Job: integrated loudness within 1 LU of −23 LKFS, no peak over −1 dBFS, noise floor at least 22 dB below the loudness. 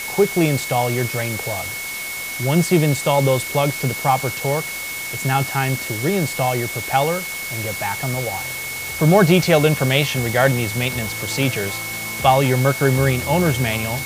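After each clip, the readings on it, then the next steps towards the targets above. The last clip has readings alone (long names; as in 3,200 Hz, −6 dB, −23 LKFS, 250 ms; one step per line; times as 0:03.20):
interfering tone 2,200 Hz; level of the tone −28 dBFS; background noise floor −28 dBFS; target noise floor −41 dBFS; integrated loudness −19.0 LKFS; sample peak −1.5 dBFS; target loudness −23.0 LKFS
→ notch filter 2,200 Hz, Q 30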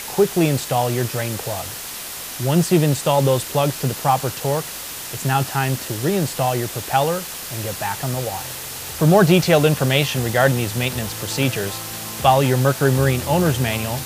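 interfering tone none found; background noise floor −32 dBFS; target noise floor −42 dBFS
→ broadband denoise 10 dB, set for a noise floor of −32 dBFS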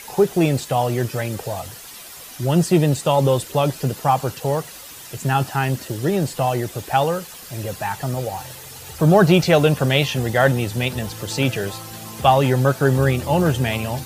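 background noise floor −39 dBFS; target noise floor −42 dBFS
→ broadband denoise 6 dB, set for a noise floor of −39 dBFS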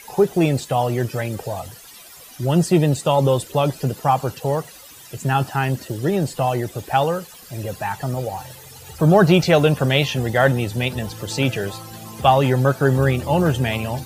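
background noise floor −43 dBFS; integrated loudness −20.0 LKFS; sample peak −1.5 dBFS; target loudness −23.0 LKFS
→ level −3 dB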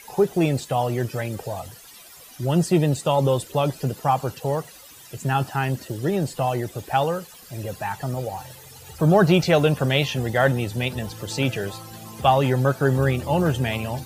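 integrated loudness −23.0 LKFS; sample peak −4.5 dBFS; background noise floor −46 dBFS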